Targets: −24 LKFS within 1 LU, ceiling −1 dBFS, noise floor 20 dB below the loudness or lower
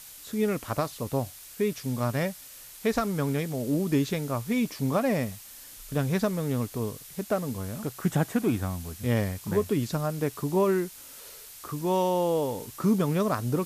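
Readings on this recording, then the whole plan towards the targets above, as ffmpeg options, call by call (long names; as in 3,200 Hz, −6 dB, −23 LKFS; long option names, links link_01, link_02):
background noise floor −47 dBFS; target noise floor −49 dBFS; integrated loudness −28.5 LKFS; sample peak −14.0 dBFS; target loudness −24.0 LKFS
→ -af "afftdn=noise_reduction=6:noise_floor=-47"
-af "volume=4.5dB"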